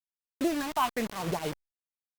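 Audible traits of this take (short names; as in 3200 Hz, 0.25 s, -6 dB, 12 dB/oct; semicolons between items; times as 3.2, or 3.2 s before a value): phasing stages 6, 0.98 Hz, lowest notch 450–2500 Hz; a quantiser's noise floor 6-bit, dither none; Opus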